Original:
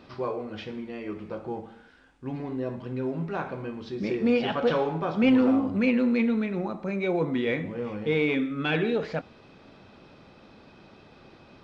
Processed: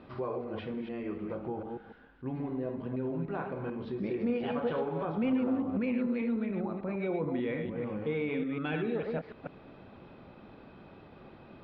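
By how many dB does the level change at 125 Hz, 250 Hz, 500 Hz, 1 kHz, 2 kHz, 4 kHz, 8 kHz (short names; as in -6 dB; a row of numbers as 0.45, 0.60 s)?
-4.5 dB, -6.5 dB, -6.0 dB, -6.5 dB, -9.5 dB, -13.0 dB, n/a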